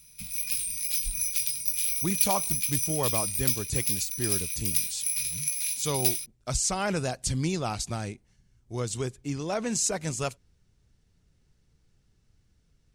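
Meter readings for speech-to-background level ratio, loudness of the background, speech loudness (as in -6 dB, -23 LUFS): -5.0 dB, -26.5 LUFS, -31.5 LUFS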